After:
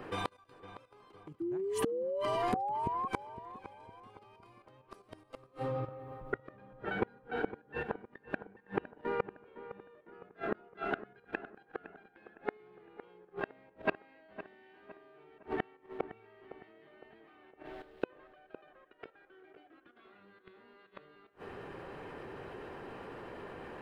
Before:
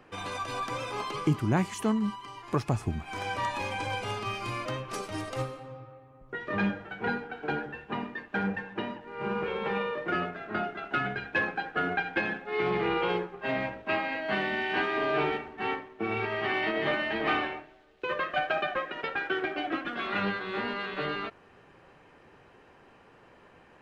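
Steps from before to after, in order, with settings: level quantiser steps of 12 dB; fifteen-band EQ 400 Hz +5 dB, 2500 Hz -3 dB, 6300 Hz -8 dB; flipped gate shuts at -30 dBFS, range -37 dB; painted sound rise, 1.4–3.08, 330–1100 Hz -47 dBFS; on a send: darkening echo 0.51 s, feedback 45%, low-pass 2200 Hz, level -13.5 dB; on the sum: gain +12 dB

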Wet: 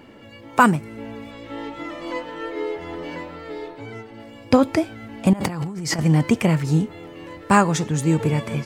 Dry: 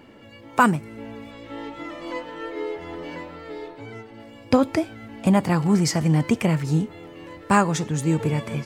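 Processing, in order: 5.33–5.99 negative-ratio compressor -30 dBFS, ratio -1; gain +2.5 dB

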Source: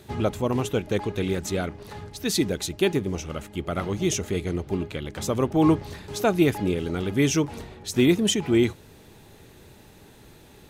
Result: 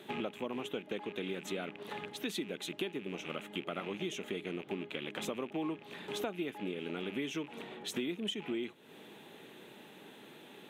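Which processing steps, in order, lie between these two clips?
rattling part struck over -34 dBFS, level -29 dBFS; HPF 190 Hz 24 dB/oct; resonant high shelf 4000 Hz -6 dB, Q 3; compressor 6:1, threshold -34 dBFS, peak gain reduction 18 dB; gain -1.5 dB

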